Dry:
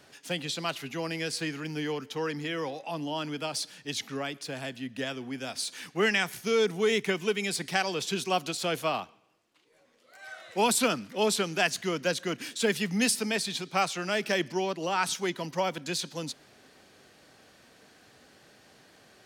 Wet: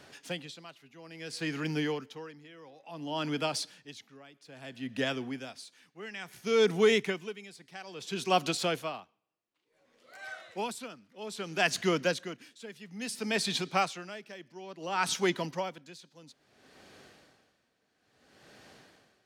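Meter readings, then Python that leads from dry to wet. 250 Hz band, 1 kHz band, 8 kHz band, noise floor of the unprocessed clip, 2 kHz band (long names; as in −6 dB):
−3.5 dB, −3.5 dB, −7.5 dB, −61 dBFS, −4.5 dB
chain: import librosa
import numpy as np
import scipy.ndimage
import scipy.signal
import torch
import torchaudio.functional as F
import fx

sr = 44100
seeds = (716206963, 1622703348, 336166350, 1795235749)

y = fx.high_shelf(x, sr, hz=7900.0, db=-6.5)
y = y * 10.0 ** (-22 * (0.5 - 0.5 * np.cos(2.0 * np.pi * 0.59 * np.arange(len(y)) / sr)) / 20.0)
y = y * 10.0 ** (3.0 / 20.0)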